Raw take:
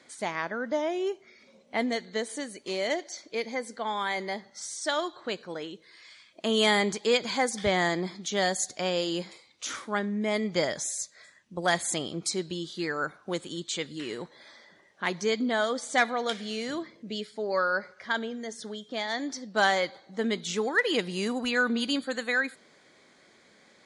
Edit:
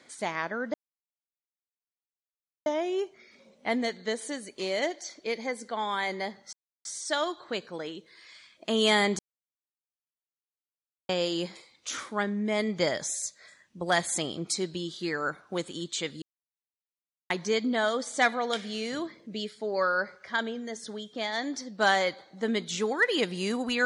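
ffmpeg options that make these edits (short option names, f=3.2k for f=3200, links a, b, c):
-filter_complex "[0:a]asplit=7[a][b][c][d][e][f][g];[a]atrim=end=0.74,asetpts=PTS-STARTPTS,afade=t=out:st=0.736:d=0.004:c=hsin,apad=pad_dur=1.92[h];[b]atrim=start=0.74:end=4.61,asetpts=PTS-STARTPTS,afade=t=in:d=0.004:c=hsin,afade=t=out:st=3.866:d=0.004:c=hsin,apad=pad_dur=0.32[i];[c]atrim=start=4.61:end=6.95,asetpts=PTS-STARTPTS,afade=t=in:d=0.004:c=hsin,afade=t=out:st=2.336:d=0.004:c=hsin[j];[d]atrim=start=6.95:end=8.85,asetpts=PTS-STARTPTS,volume=0[k];[e]atrim=start=8.85:end=13.98,asetpts=PTS-STARTPTS,afade=t=in:d=0.004:c=hsin,afade=t=out:st=5.126:d=0.004:c=hsin[l];[f]atrim=start=13.98:end=15.06,asetpts=PTS-STARTPTS,volume=0[m];[g]atrim=start=15.06,asetpts=PTS-STARTPTS,afade=t=in:d=0.004:c=hsin[n];[h][i][j][k][l][m][n]concat=n=7:v=0:a=1"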